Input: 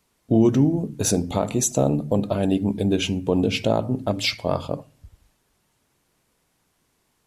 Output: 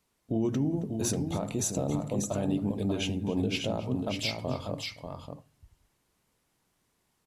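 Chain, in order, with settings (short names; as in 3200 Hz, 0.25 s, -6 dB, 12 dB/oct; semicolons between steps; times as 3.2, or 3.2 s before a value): limiter -13.5 dBFS, peak gain reduction 6 dB; tapped delay 0.271/0.59/0.591 s -19/-5.5/-16.5 dB; gain -7 dB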